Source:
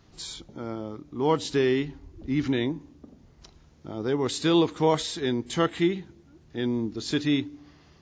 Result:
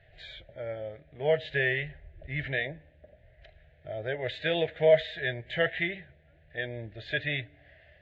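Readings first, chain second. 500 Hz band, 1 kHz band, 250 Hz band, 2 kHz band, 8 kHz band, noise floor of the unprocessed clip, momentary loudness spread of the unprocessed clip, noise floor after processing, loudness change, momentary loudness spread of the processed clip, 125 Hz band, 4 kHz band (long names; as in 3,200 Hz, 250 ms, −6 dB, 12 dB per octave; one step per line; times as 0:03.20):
−1.5 dB, −10.0 dB, −16.0 dB, +6.5 dB, below −30 dB, −57 dBFS, 15 LU, −61 dBFS, −3.5 dB, 19 LU, −5.0 dB, −4.5 dB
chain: drawn EQ curve 140 Hz 0 dB, 260 Hz −23 dB, 430 Hz −6 dB, 620 Hz +13 dB, 1,100 Hz −27 dB, 1,700 Hz +12 dB, 3,700 Hz −3 dB, 5,500 Hz −29 dB
flanger 0.27 Hz, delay 2.6 ms, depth 2.8 ms, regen −64%
level +2 dB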